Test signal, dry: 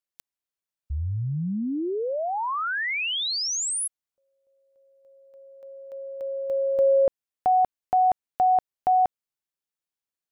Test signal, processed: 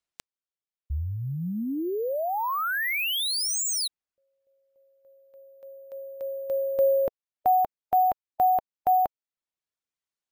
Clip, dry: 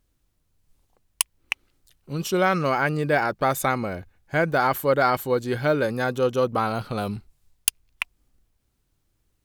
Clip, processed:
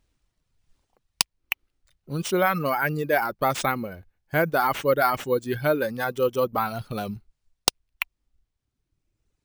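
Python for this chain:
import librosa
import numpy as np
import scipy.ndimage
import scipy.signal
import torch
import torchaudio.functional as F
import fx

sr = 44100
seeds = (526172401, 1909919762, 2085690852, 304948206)

y = fx.dereverb_blind(x, sr, rt60_s=1.8)
y = np.repeat(y[::3], 3)[:len(y)]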